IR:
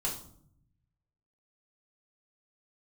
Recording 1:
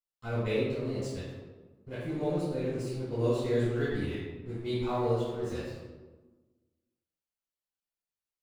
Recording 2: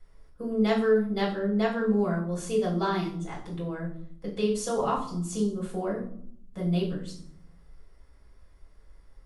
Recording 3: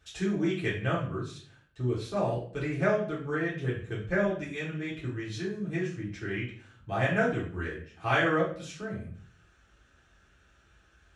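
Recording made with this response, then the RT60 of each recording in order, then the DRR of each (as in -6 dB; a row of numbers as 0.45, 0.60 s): 2; 1.3, 0.65, 0.50 s; -14.0, -5.5, -8.5 dB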